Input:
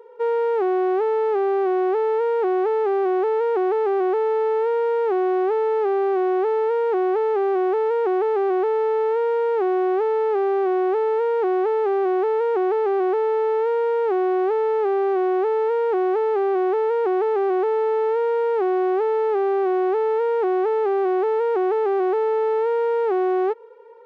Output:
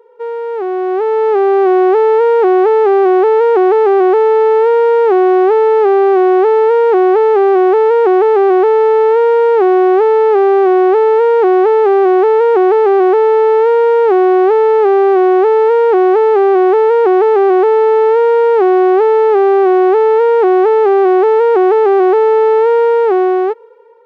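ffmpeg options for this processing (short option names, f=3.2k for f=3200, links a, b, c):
-af "dynaudnorm=f=430:g=5:m=12dB"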